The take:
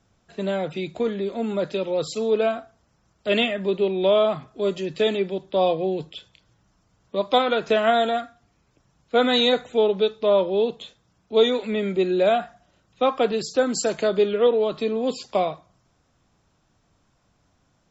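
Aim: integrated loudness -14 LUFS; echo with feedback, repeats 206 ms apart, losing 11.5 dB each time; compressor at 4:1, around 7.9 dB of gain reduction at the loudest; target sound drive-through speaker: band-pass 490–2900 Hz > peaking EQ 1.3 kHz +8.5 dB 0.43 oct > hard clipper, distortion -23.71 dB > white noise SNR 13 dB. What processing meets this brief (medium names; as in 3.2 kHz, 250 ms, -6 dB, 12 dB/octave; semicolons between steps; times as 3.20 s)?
compression 4:1, threshold -23 dBFS; band-pass 490–2900 Hz; peaking EQ 1.3 kHz +8.5 dB 0.43 oct; feedback delay 206 ms, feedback 27%, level -11.5 dB; hard clipper -19.5 dBFS; white noise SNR 13 dB; trim +16.5 dB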